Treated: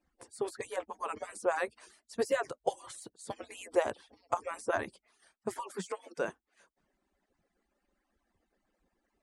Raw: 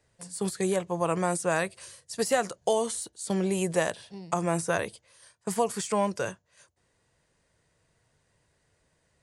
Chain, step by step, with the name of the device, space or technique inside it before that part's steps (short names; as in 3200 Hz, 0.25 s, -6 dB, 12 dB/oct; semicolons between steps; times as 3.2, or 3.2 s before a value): median-filter separation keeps percussive; through cloth (high shelf 2900 Hz -14 dB); 5.6–6.18 elliptic high-pass 180 Hz